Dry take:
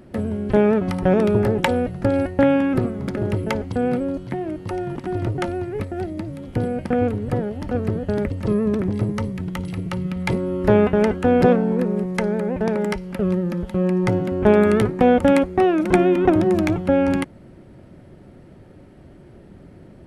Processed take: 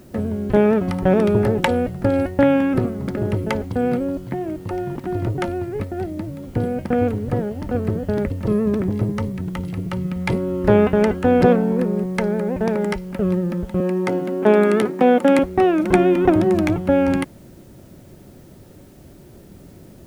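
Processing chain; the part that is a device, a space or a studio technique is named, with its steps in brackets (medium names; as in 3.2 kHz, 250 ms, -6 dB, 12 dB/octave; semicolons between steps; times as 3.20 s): 13.80–15.39 s: high-pass 200 Hz 24 dB/octave; plain cassette with noise reduction switched in (tape noise reduction on one side only decoder only; wow and flutter 14 cents; white noise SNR 38 dB); trim +1 dB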